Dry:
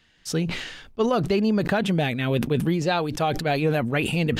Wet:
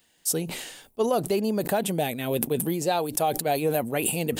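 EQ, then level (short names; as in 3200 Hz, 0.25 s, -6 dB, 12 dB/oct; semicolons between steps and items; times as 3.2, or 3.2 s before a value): RIAA curve recording; band shelf 2700 Hz -11.5 dB 2.8 oct; +2.0 dB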